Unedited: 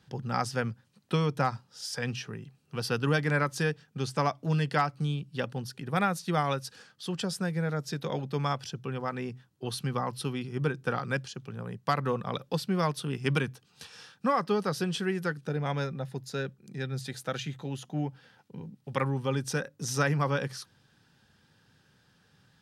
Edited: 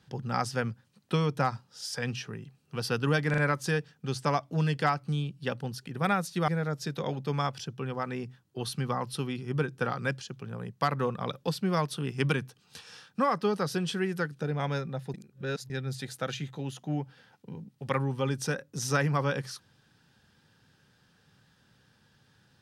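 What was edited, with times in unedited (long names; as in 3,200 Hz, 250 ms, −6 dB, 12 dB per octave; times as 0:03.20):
0:03.30: stutter 0.04 s, 3 plays
0:06.40–0:07.54: remove
0:16.20–0:16.76: reverse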